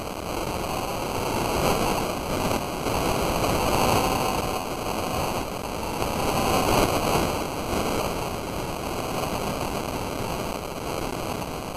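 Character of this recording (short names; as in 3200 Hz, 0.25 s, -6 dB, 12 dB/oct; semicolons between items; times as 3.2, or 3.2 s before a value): a quantiser's noise floor 6-bit, dither triangular; random-step tremolo; aliases and images of a low sample rate 1800 Hz, jitter 0%; WMA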